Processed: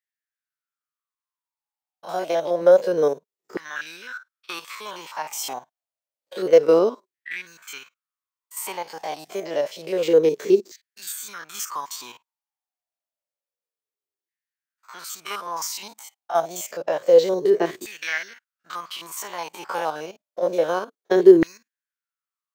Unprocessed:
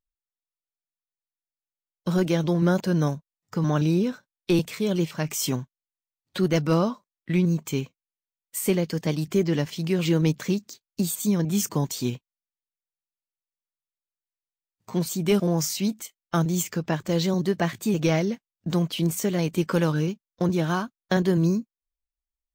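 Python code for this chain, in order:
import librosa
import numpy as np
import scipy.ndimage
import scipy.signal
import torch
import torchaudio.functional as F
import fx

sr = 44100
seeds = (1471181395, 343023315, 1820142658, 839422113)

y = fx.spec_steps(x, sr, hold_ms=50)
y = fx.filter_lfo_highpass(y, sr, shape='saw_down', hz=0.28, low_hz=360.0, high_hz=1900.0, q=7.7)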